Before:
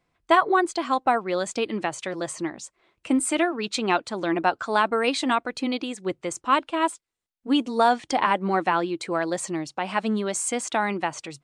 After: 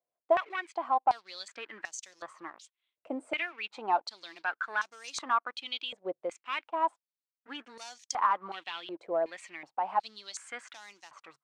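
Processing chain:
leveller curve on the samples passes 2
band-pass on a step sequencer 2.7 Hz 610–6,200 Hz
level −5.5 dB

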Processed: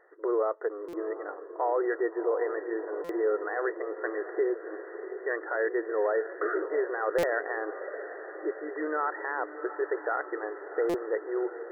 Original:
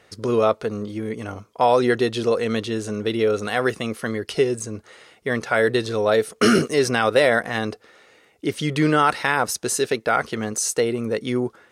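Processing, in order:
brickwall limiter −13.5 dBFS, peak gain reduction 8.5 dB
linear-phase brick-wall band-pass 310–2,000 Hz
on a send: feedback delay with all-pass diffusion 700 ms, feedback 63%, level −11.5 dB
on the sum: buffer that repeats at 0:00.88/0:03.04/0:07.18/0:10.89, samples 256, times 8
level −4.5 dB

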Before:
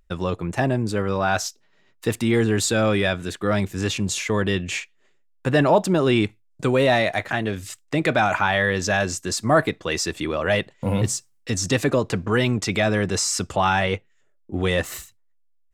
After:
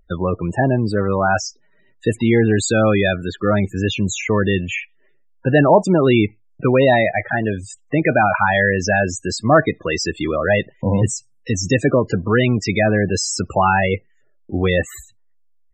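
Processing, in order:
spectral peaks only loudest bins 32
level +5 dB

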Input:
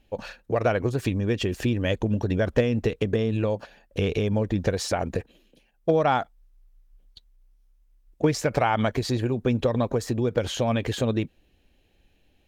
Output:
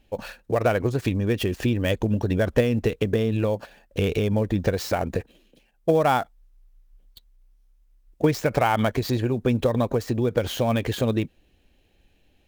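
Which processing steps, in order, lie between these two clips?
gap after every zero crossing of 0.051 ms
level +1.5 dB

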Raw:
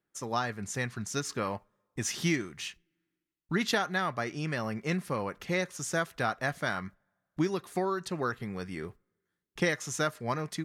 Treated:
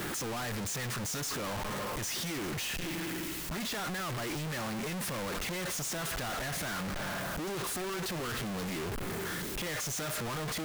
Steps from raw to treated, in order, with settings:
sign of each sample alone
level −2 dB

